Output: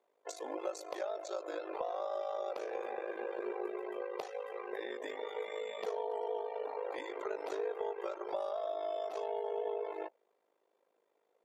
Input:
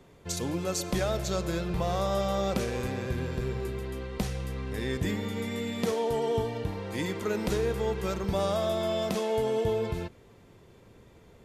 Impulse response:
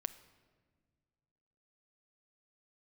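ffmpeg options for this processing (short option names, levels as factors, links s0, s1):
-af "highpass=f=560:w=0.5412,highpass=f=560:w=1.3066,afftdn=nr=21:nf=-44,aeval=exprs='val(0)*sin(2*PI*26*n/s)':c=same,acompressor=threshold=0.00501:ratio=6,tiltshelf=f=840:g=10,volume=2.66"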